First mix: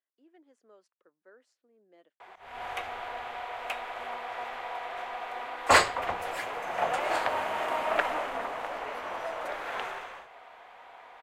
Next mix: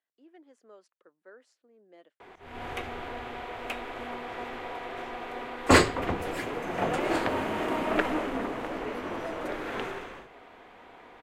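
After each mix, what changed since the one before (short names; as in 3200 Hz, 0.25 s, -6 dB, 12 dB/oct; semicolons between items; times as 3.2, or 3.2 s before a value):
speech +5.0 dB; background: add resonant low shelf 470 Hz +12.5 dB, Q 1.5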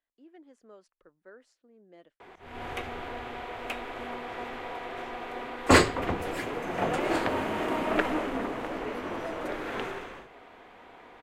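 speech: remove HPF 290 Hz 12 dB/oct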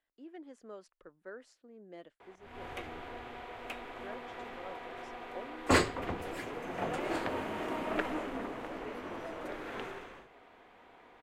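speech +4.5 dB; background -7.0 dB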